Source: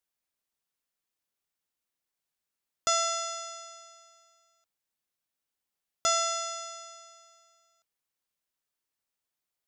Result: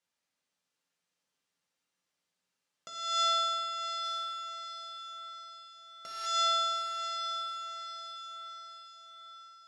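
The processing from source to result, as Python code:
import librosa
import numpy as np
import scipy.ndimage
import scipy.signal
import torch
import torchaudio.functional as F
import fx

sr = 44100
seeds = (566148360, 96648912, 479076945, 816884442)

p1 = fx.sample_sort(x, sr, block=8, at=(4.03, 6.25), fade=0.02)
p2 = fx.over_compress(p1, sr, threshold_db=-33.0, ratio=-0.5)
p3 = fx.bandpass_edges(p2, sr, low_hz=110.0, high_hz=7000.0)
p4 = p3 + fx.echo_diffused(p3, sr, ms=693, feedback_pct=49, wet_db=-8, dry=0)
p5 = fx.rev_fdn(p4, sr, rt60_s=1.2, lf_ratio=0.85, hf_ratio=0.9, size_ms=34.0, drr_db=-1.0)
y = p5 * 10.0 ** (-1.5 / 20.0)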